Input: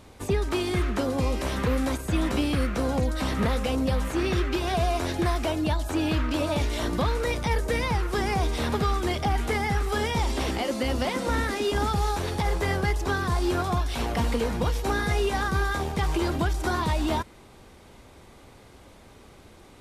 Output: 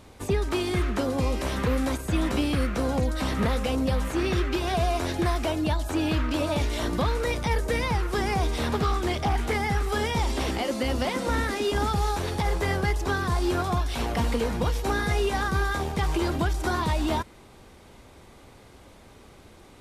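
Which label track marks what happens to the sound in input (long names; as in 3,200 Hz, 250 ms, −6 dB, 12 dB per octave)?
8.690000	9.540000	highs frequency-modulated by the lows depth 0.16 ms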